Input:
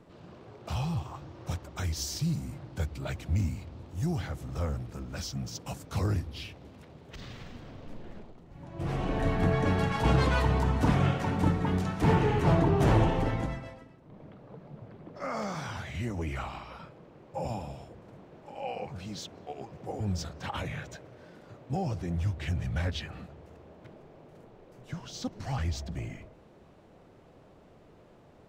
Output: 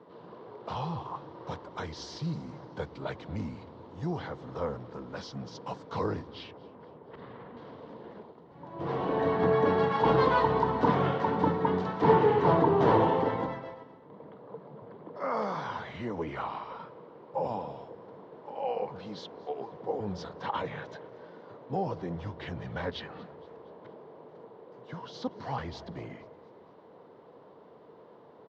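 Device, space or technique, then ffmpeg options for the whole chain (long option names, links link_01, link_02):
kitchen radio: -filter_complex "[0:a]asettb=1/sr,asplit=3[link_01][link_02][link_03];[link_01]atrim=end=6.514[link_04];[link_02]atrim=start=6.51:end=7.57,asetpts=PTS-STARTPTS,afade=type=in:duration=0.004:curve=qsin,afade=type=out:start_time=1.056:duration=0.004:curve=qsin,lowpass=1800[link_05];[link_03]atrim=start=7.566[link_06];[link_04][link_05]acrossfade=duration=0.004:curve1=hsin:curve2=qsin[link_07];[link_07][link_06]acrossfade=duration=0.004:curve1=qsin:curve2=hsin,highpass=180,equalizer=frequency=460:width_type=q:width=4:gain=9,equalizer=frequency=980:width_type=q:width=4:gain=10,equalizer=frequency=2500:width_type=q:width=4:gain=-8,lowpass=frequency=4300:width=0.5412,lowpass=frequency=4300:width=1.3066,aecho=1:1:234|468|702|936:0.075|0.0397|0.0211|0.0112"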